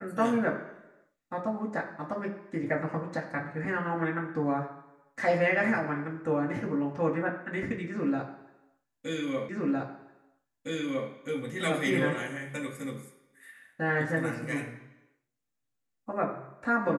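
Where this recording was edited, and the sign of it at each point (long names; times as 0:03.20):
0:09.49: the same again, the last 1.61 s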